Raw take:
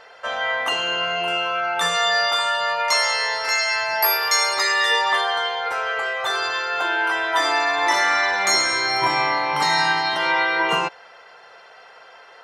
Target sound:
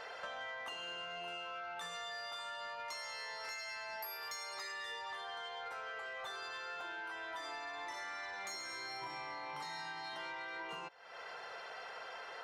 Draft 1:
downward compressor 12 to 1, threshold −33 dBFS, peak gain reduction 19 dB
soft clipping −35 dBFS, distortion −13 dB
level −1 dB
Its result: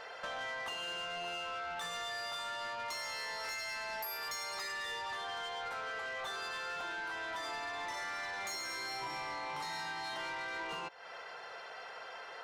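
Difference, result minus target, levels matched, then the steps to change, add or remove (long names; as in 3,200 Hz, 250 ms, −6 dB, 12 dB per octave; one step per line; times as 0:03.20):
downward compressor: peak gain reduction −6.5 dB
change: downward compressor 12 to 1, threshold −40 dBFS, peak gain reduction 25 dB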